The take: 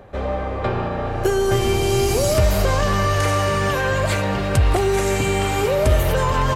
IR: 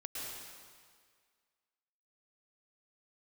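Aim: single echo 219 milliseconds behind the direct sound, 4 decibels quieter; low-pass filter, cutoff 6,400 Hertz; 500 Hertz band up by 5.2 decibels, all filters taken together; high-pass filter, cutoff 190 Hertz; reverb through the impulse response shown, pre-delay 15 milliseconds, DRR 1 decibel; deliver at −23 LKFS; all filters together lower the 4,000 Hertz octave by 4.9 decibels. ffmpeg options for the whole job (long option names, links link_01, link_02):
-filter_complex "[0:a]highpass=190,lowpass=6400,equalizer=frequency=500:width_type=o:gain=7,equalizer=frequency=4000:width_type=o:gain=-6.5,aecho=1:1:219:0.631,asplit=2[link_01][link_02];[1:a]atrim=start_sample=2205,adelay=15[link_03];[link_02][link_03]afir=irnorm=-1:irlink=0,volume=-1.5dB[link_04];[link_01][link_04]amix=inputs=2:normalize=0,volume=-10dB"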